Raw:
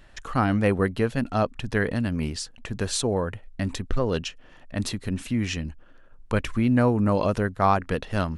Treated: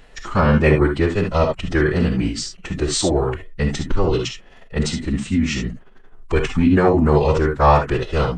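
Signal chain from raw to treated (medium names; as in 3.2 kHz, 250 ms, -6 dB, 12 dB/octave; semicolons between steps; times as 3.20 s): gated-style reverb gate 90 ms rising, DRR 4.5 dB; formant-preserving pitch shift -5 st; trim +6 dB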